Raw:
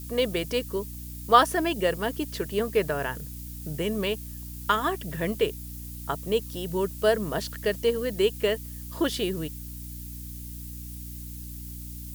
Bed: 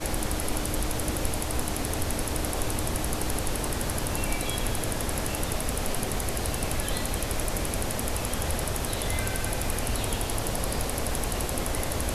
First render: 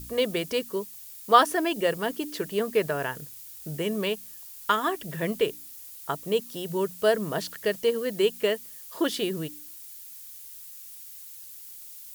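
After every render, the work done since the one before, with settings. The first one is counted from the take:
hum removal 60 Hz, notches 5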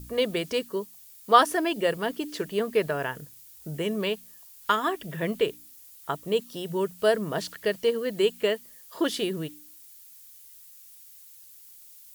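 noise reduction from a noise print 6 dB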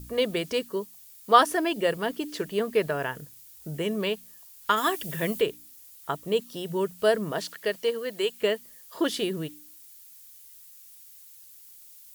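0:04.76–0:05.40: high-shelf EQ 2,500 Hz → 4,900 Hz +11.5 dB
0:07.31–0:08.40: high-pass filter 230 Hz → 670 Hz 6 dB per octave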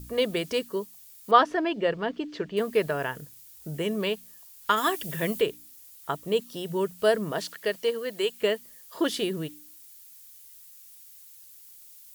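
0:01.31–0:02.57: high-frequency loss of the air 170 metres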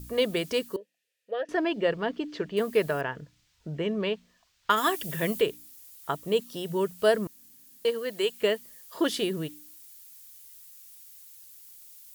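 0:00.76–0:01.49: formant filter e
0:03.01–0:04.70: high-frequency loss of the air 170 metres
0:07.27–0:07.85: fill with room tone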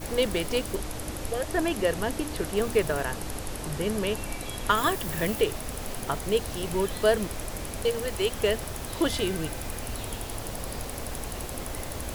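mix in bed −6 dB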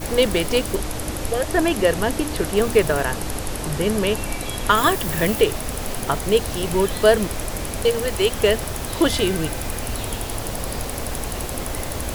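level +7.5 dB
brickwall limiter −2 dBFS, peak gain reduction 1.5 dB

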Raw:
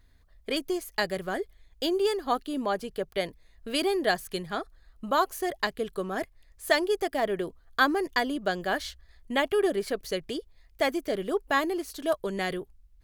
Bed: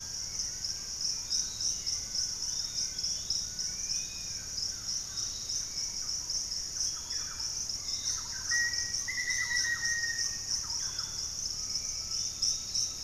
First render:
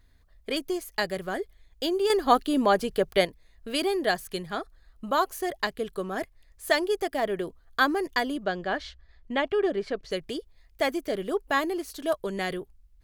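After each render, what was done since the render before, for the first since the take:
0:02.10–0:03.25: clip gain +7 dB
0:08.44–0:10.11: high-frequency loss of the air 130 metres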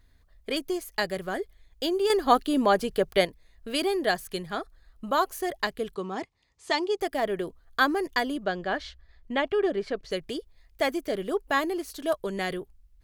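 0:05.95–0:07.01: loudspeaker in its box 110–7,400 Hz, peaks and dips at 610 Hz −9 dB, 890 Hz +6 dB, 1,600 Hz −9 dB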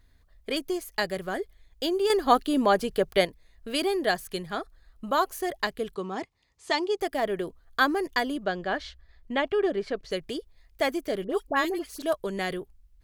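0:11.24–0:12.02: all-pass dispersion highs, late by 59 ms, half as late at 1,500 Hz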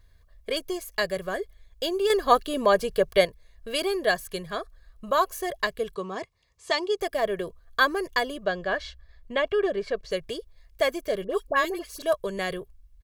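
comb filter 1.8 ms, depth 58%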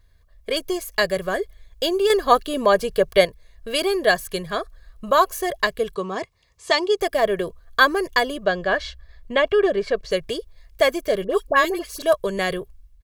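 automatic gain control gain up to 6.5 dB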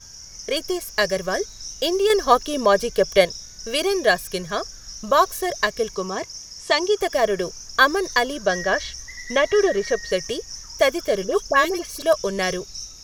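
mix in bed −3.5 dB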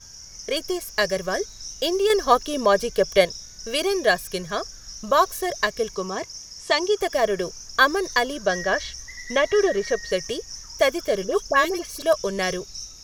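level −1.5 dB

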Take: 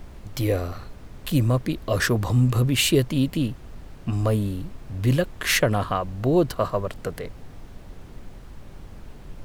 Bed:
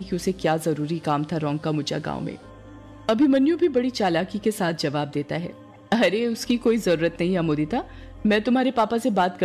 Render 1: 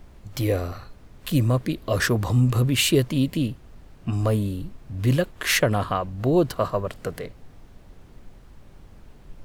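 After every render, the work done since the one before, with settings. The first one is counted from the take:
noise reduction from a noise print 6 dB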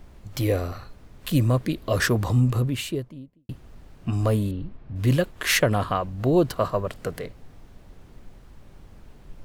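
0:02.17–0:03.49: fade out and dull
0:04.51–0:04.96: high-frequency loss of the air 260 metres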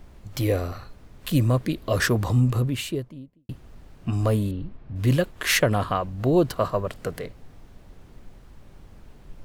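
no processing that can be heard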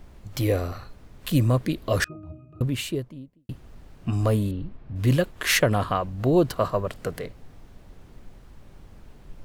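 0:02.04–0:02.61: resonances in every octave D#, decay 0.36 s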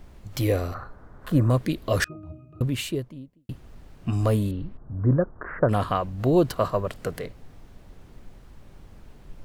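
0:00.74–0:01.50: drawn EQ curve 210 Hz 0 dB, 1,500 Hz +8 dB, 2,500 Hz −12 dB
0:04.77–0:05.69: Butterworth low-pass 1,500 Hz 48 dB per octave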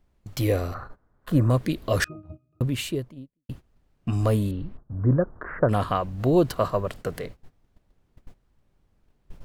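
noise gate −39 dBFS, range −19 dB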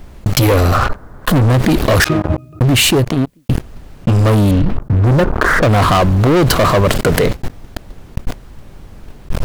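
leveller curve on the samples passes 5
envelope flattener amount 70%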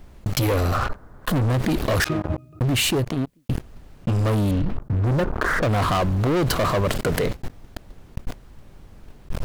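level −9.5 dB

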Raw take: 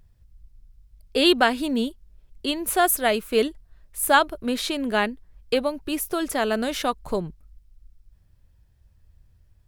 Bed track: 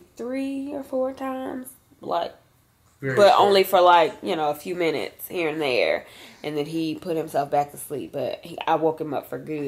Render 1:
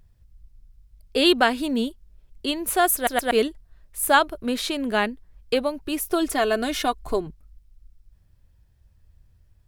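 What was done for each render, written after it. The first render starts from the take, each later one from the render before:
0:02.95: stutter in place 0.12 s, 3 plays
0:06.10–0:07.27: comb filter 2.8 ms, depth 62%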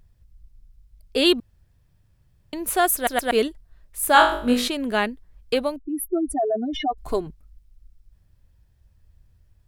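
0:01.40–0:02.53: fill with room tone
0:04.13–0:04.68: flutter between parallel walls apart 3.5 metres, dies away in 0.47 s
0:05.76–0:06.98: expanding power law on the bin magnitudes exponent 3.6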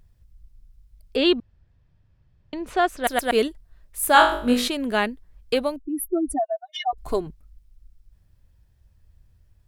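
0:01.16–0:03.04: high-frequency loss of the air 150 metres
0:06.39–0:06.93: linear-phase brick-wall high-pass 640 Hz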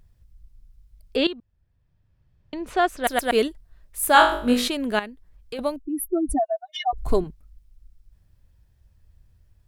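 0:01.27–0:02.67: fade in, from −16 dB
0:04.99–0:05.59: downward compressor 1.5 to 1, threshold −50 dBFS
0:06.29–0:07.24: low-shelf EQ 210 Hz +11.5 dB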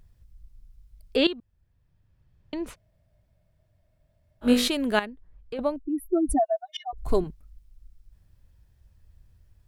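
0:02.73–0:04.44: fill with room tone, crossfade 0.06 s
0:05.05–0:06.06: low-pass filter 1,500 Hz 6 dB per octave
0:06.77–0:07.28: fade in, from −21 dB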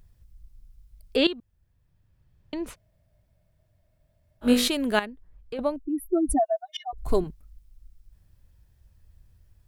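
high-shelf EQ 8,200 Hz +4.5 dB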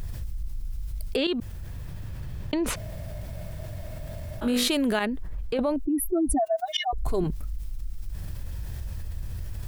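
brickwall limiter −19 dBFS, peak gain reduction 11.5 dB
envelope flattener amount 70%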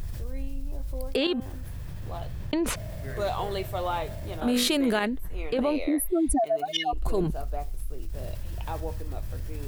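mix in bed track −15 dB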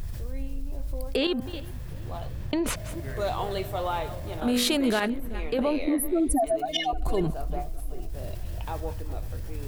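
delay that plays each chunk backwards 200 ms, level −13 dB
feedback echo with a low-pass in the loop 383 ms, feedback 65%, low-pass 2,000 Hz, level −21 dB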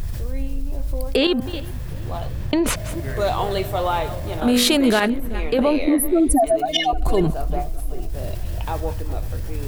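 level +7.5 dB

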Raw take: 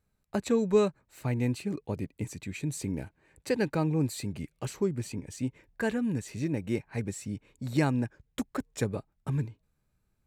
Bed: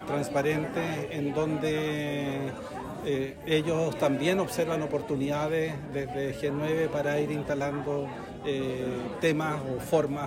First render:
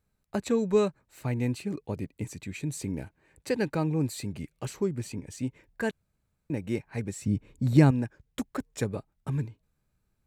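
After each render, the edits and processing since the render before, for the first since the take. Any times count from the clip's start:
0:05.91–0:06.50: fill with room tone
0:07.21–0:07.91: low-shelf EQ 390 Hz +11 dB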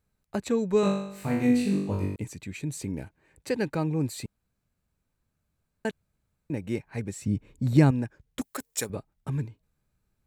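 0:00.81–0:02.16: flutter between parallel walls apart 3.5 metres, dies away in 0.74 s
0:04.26–0:05.85: fill with room tone
0:08.41–0:08.90: RIAA equalisation recording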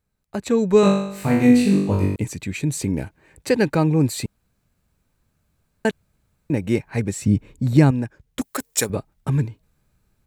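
automatic gain control gain up to 10 dB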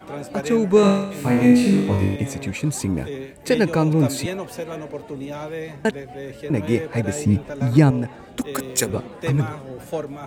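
mix in bed −2.5 dB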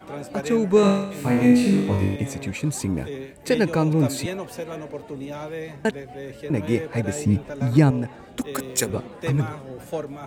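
level −2 dB

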